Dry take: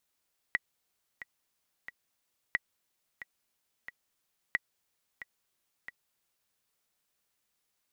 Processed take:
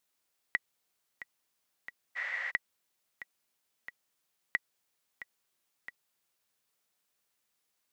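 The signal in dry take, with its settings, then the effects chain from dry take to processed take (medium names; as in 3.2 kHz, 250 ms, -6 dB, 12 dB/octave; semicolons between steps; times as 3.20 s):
metronome 90 bpm, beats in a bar 3, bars 3, 1.94 kHz, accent 15 dB -14 dBFS
spectral replace 2.19–2.48 s, 490–8100 Hz after; bass shelf 95 Hz -9 dB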